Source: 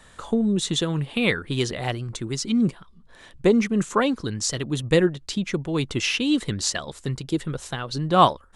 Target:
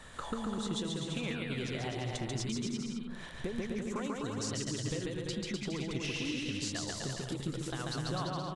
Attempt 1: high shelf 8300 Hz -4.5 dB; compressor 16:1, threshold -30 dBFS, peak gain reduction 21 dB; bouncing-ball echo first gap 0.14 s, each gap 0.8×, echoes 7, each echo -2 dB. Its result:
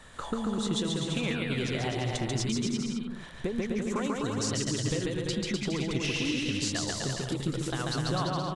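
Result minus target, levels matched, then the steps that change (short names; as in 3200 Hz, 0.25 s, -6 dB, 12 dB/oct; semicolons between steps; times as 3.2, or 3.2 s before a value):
compressor: peak gain reduction -6 dB
change: compressor 16:1, threshold -36.5 dBFS, peak gain reduction 27 dB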